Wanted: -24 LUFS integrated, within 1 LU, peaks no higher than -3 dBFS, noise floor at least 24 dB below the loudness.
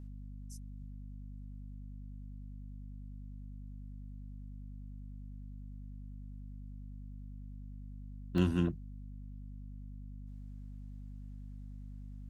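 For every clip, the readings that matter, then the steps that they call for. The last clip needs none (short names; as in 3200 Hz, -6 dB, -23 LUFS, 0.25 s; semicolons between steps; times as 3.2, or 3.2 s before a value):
dropouts 1; longest dropout 2.5 ms; hum 50 Hz; harmonics up to 250 Hz; hum level -44 dBFS; loudness -44.0 LUFS; peak -17.0 dBFS; loudness target -24.0 LUFS
-> interpolate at 8.38, 2.5 ms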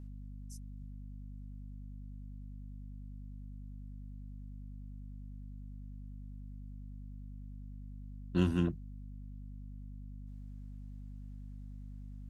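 dropouts 0; hum 50 Hz; harmonics up to 250 Hz; hum level -44 dBFS
-> de-hum 50 Hz, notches 5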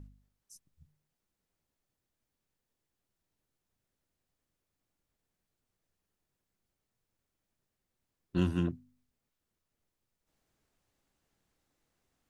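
hum none; loudness -33.0 LUFS; peak -16.5 dBFS; loudness target -24.0 LUFS
-> gain +9 dB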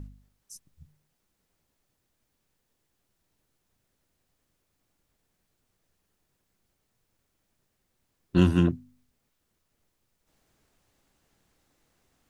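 loudness -24.0 LUFS; peak -7.5 dBFS; noise floor -78 dBFS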